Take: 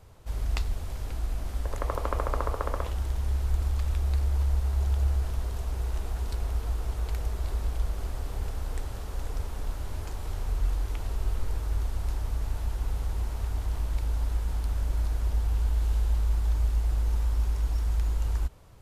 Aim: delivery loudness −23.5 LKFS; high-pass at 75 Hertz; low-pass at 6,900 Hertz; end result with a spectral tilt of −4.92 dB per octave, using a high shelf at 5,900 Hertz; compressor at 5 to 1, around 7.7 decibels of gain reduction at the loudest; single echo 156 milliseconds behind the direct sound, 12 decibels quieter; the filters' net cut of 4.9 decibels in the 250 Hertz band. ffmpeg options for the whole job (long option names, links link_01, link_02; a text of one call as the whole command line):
ffmpeg -i in.wav -af "highpass=75,lowpass=6900,equalizer=frequency=250:width_type=o:gain=-7,highshelf=frequency=5900:gain=5,acompressor=threshold=-35dB:ratio=5,aecho=1:1:156:0.251,volume=18dB" out.wav